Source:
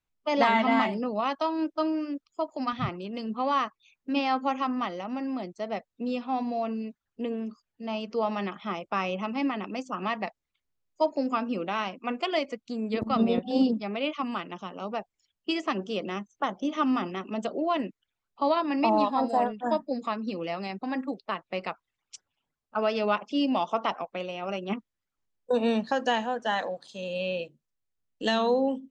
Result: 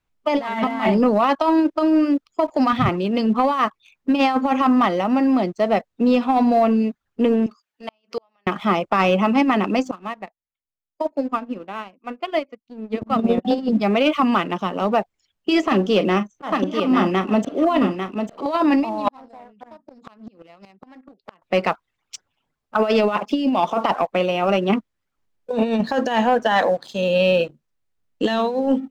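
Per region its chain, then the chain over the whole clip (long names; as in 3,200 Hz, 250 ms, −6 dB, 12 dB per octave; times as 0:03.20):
0:07.46–0:08.47: high-pass filter 1,400 Hz 6 dB per octave + gate with flip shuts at −30 dBFS, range −37 dB
0:09.91–0:13.45: high-frequency loss of the air 150 metres + expander for the loud parts 2.5 to 1, over −34 dBFS
0:15.66–0:18.46: double-tracking delay 38 ms −12.5 dB + volume swells 279 ms + single-tap delay 847 ms −7 dB
0:19.08–0:21.42: gate with flip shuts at −26 dBFS, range −26 dB + downward compressor 2.5 to 1, threshold −52 dBFS + highs frequency-modulated by the lows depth 0.32 ms
whole clip: compressor whose output falls as the input rises −28 dBFS, ratio −0.5; high-shelf EQ 4,100 Hz −8 dB; leveller curve on the samples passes 1; level +9 dB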